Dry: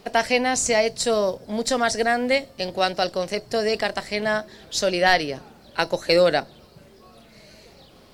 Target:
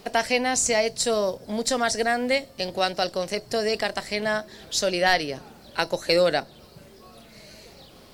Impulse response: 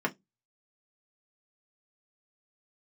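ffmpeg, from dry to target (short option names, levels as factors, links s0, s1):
-filter_complex "[0:a]highshelf=f=5500:g=5,asplit=2[s0][s1];[s1]acompressor=threshold=0.0282:ratio=6,volume=0.75[s2];[s0][s2]amix=inputs=2:normalize=0,volume=0.631"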